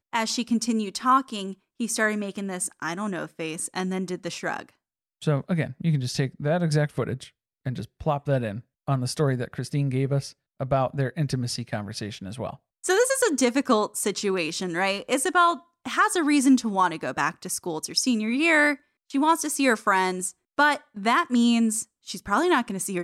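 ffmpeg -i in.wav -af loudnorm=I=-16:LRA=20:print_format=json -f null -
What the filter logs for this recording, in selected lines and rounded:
"input_i" : "-24.7",
"input_tp" : "-8.9",
"input_lra" : "5.3",
"input_thresh" : "-35.0",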